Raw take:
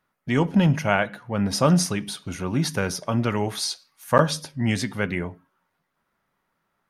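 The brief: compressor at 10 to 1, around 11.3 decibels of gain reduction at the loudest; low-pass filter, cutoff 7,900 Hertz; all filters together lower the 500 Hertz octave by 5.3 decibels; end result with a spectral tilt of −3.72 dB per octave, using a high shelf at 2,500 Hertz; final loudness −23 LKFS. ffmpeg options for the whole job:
ffmpeg -i in.wav -af "lowpass=7900,equalizer=frequency=500:width_type=o:gain=-7,highshelf=frequency=2500:gain=8,acompressor=threshold=-26dB:ratio=10,volume=8dB" out.wav

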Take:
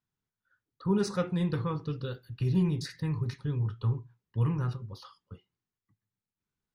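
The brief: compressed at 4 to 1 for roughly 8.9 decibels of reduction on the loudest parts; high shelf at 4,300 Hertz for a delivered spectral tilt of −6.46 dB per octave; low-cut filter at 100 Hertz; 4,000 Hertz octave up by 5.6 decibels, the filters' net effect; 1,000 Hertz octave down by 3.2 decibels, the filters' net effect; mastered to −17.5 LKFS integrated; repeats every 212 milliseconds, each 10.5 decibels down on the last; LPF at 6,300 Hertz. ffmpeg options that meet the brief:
ffmpeg -i in.wav -af "highpass=100,lowpass=6300,equalizer=frequency=1000:width_type=o:gain=-4.5,equalizer=frequency=4000:width_type=o:gain=5.5,highshelf=frequency=4300:gain=4,acompressor=threshold=-33dB:ratio=4,aecho=1:1:212|424|636:0.299|0.0896|0.0269,volume=20.5dB" out.wav

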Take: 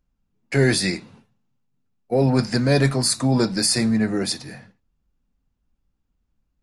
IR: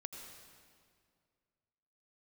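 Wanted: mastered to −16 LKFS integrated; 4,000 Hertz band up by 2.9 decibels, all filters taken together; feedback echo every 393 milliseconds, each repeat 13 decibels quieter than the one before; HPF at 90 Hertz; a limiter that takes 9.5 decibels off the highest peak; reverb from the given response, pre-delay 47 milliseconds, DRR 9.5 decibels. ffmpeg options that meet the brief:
-filter_complex "[0:a]highpass=90,equalizer=frequency=4000:width_type=o:gain=3.5,alimiter=limit=-15dB:level=0:latency=1,aecho=1:1:393|786|1179:0.224|0.0493|0.0108,asplit=2[link_01][link_02];[1:a]atrim=start_sample=2205,adelay=47[link_03];[link_02][link_03]afir=irnorm=-1:irlink=0,volume=-6.5dB[link_04];[link_01][link_04]amix=inputs=2:normalize=0,volume=8dB"

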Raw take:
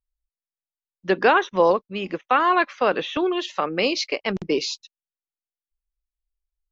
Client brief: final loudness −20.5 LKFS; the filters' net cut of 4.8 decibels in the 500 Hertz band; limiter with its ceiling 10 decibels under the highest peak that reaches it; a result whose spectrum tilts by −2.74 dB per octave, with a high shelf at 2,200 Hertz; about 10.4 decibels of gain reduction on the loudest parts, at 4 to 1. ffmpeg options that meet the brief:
ffmpeg -i in.wav -af "equalizer=frequency=500:width_type=o:gain=-6.5,highshelf=frequency=2200:gain=9,acompressor=threshold=-25dB:ratio=4,volume=10.5dB,alimiter=limit=-9.5dB:level=0:latency=1" out.wav

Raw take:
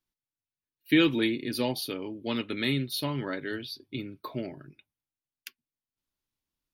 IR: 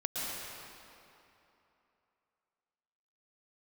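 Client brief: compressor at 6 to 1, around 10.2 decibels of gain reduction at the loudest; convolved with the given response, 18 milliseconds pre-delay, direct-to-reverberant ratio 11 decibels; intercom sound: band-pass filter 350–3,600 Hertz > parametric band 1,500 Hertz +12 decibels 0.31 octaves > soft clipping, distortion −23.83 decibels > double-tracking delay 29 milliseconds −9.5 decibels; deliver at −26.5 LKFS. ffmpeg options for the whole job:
-filter_complex "[0:a]acompressor=threshold=-28dB:ratio=6,asplit=2[link_01][link_02];[1:a]atrim=start_sample=2205,adelay=18[link_03];[link_02][link_03]afir=irnorm=-1:irlink=0,volume=-16.5dB[link_04];[link_01][link_04]amix=inputs=2:normalize=0,highpass=350,lowpass=3600,equalizer=frequency=1500:width_type=o:width=0.31:gain=12,asoftclip=threshold=-20.5dB,asplit=2[link_05][link_06];[link_06]adelay=29,volume=-9.5dB[link_07];[link_05][link_07]amix=inputs=2:normalize=0,volume=9.5dB"

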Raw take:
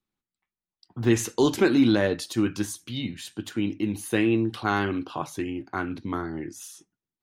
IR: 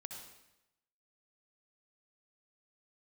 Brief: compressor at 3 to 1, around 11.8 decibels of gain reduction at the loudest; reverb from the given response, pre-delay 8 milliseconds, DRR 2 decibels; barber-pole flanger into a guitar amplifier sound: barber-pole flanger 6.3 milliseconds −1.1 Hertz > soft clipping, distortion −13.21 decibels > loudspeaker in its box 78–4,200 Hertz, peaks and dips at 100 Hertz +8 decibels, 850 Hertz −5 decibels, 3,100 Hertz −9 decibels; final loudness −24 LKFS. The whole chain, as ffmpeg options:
-filter_complex "[0:a]acompressor=threshold=-32dB:ratio=3,asplit=2[link_01][link_02];[1:a]atrim=start_sample=2205,adelay=8[link_03];[link_02][link_03]afir=irnorm=-1:irlink=0,volume=1.5dB[link_04];[link_01][link_04]amix=inputs=2:normalize=0,asplit=2[link_05][link_06];[link_06]adelay=6.3,afreqshift=-1.1[link_07];[link_05][link_07]amix=inputs=2:normalize=1,asoftclip=threshold=-29dB,highpass=78,equalizer=frequency=100:width_type=q:width=4:gain=8,equalizer=frequency=850:width_type=q:width=4:gain=-5,equalizer=frequency=3100:width_type=q:width=4:gain=-9,lowpass=frequency=4200:width=0.5412,lowpass=frequency=4200:width=1.3066,volume=14dB"

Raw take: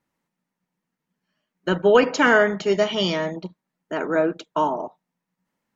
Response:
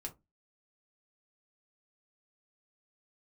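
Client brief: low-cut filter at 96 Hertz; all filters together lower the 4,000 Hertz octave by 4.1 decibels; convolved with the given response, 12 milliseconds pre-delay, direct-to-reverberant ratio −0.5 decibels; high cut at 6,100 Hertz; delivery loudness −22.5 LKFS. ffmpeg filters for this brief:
-filter_complex "[0:a]highpass=96,lowpass=6100,equalizer=frequency=4000:width_type=o:gain=-6,asplit=2[link_01][link_02];[1:a]atrim=start_sample=2205,adelay=12[link_03];[link_02][link_03]afir=irnorm=-1:irlink=0,volume=3dB[link_04];[link_01][link_04]amix=inputs=2:normalize=0,volume=-5.5dB"

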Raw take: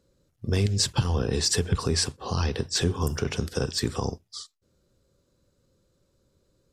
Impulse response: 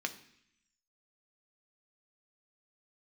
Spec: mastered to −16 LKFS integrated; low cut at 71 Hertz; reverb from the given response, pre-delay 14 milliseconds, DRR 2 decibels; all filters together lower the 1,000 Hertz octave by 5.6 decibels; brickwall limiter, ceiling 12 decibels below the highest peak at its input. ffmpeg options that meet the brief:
-filter_complex "[0:a]highpass=71,equalizer=frequency=1000:width_type=o:gain=-7,alimiter=limit=-23dB:level=0:latency=1,asplit=2[link_01][link_02];[1:a]atrim=start_sample=2205,adelay=14[link_03];[link_02][link_03]afir=irnorm=-1:irlink=0,volume=-5dB[link_04];[link_01][link_04]amix=inputs=2:normalize=0,volume=16dB"

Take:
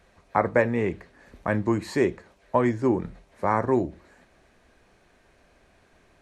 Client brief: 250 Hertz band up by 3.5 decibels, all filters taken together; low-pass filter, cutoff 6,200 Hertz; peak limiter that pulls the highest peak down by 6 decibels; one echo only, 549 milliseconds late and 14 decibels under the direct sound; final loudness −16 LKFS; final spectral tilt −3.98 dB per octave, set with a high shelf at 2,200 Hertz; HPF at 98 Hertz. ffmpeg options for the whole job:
ffmpeg -i in.wav -af "highpass=98,lowpass=6200,equalizer=frequency=250:width_type=o:gain=4.5,highshelf=frequency=2200:gain=5,alimiter=limit=-11.5dB:level=0:latency=1,aecho=1:1:549:0.2,volume=9.5dB" out.wav

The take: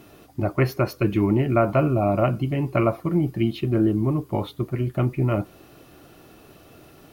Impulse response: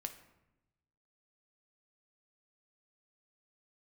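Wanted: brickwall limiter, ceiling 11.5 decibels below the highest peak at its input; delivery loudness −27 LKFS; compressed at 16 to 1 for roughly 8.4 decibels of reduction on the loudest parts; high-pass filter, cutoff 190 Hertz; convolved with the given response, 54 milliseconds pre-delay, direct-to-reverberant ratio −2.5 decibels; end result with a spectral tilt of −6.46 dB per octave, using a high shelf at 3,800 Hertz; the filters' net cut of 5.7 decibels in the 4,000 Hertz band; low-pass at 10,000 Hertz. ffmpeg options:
-filter_complex "[0:a]highpass=190,lowpass=10000,highshelf=frequency=3800:gain=-4,equalizer=frequency=4000:width_type=o:gain=-5.5,acompressor=threshold=-24dB:ratio=16,alimiter=limit=-24dB:level=0:latency=1,asplit=2[link_01][link_02];[1:a]atrim=start_sample=2205,adelay=54[link_03];[link_02][link_03]afir=irnorm=-1:irlink=0,volume=5dB[link_04];[link_01][link_04]amix=inputs=2:normalize=0,volume=2.5dB"

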